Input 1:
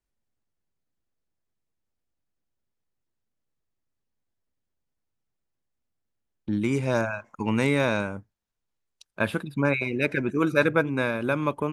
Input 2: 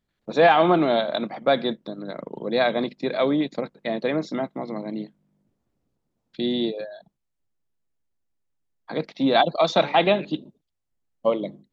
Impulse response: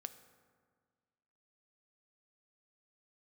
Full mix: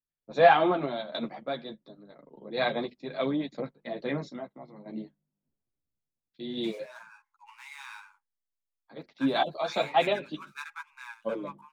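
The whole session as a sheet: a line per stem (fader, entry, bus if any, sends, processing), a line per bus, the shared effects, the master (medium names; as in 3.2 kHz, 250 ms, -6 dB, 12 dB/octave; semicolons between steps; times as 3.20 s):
-6.0 dB, 0.00 s, no send, median filter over 9 samples; Chebyshev high-pass 830 Hz, order 10
-3.0 dB, 0.00 s, no send, none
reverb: none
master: chorus voices 4, 0.98 Hz, delay 11 ms, depth 3.8 ms; random-step tremolo; three bands expanded up and down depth 40%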